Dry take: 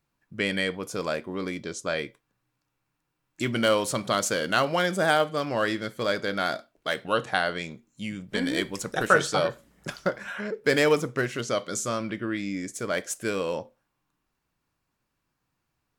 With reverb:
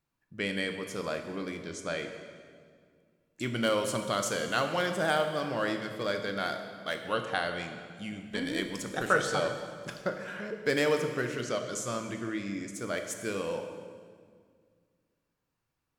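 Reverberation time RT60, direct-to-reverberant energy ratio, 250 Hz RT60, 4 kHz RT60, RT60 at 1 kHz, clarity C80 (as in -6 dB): 2.0 s, 6.0 dB, 2.5 s, 1.6 s, 1.8 s, 8.0 dB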